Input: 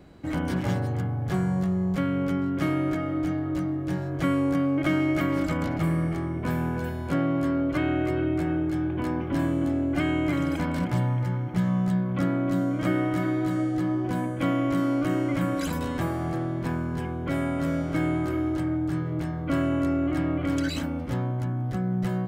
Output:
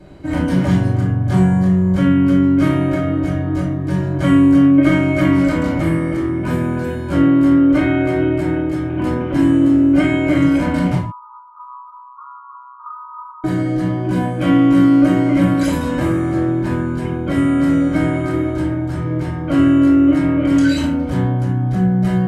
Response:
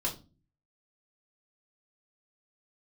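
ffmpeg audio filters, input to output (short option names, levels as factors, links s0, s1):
-filter_complex "[0:a]asettb=1/sr,asplit=3[s0][s1][s2];[s0]atrim=end=10.954[s3];[s1]atrim=start=10.95:end=13.44,asetpts=PTS-STARTPTS,afade=t=in:d=0.004:c=qsin,afade=t=out:st=2.486:d=0.004:c=qsin,asuperpass=centerf=1100:order=12:qfactor=2.7[s4];[s2]atrim=start=13.436[s5];[s3][s4]acrossfade=d=0.004:c1=hsin:c2=qsin[s6];[s6][s5]acrossfade=d=0.004:c1=qsin:c2=hsin[s7];[1:a]atrim=start_sample=2205,atrim=end_sample=4410,asetrate=25578,aresample=44100[s8];[s7][s8]afir=irnorm=-1:irlink=0"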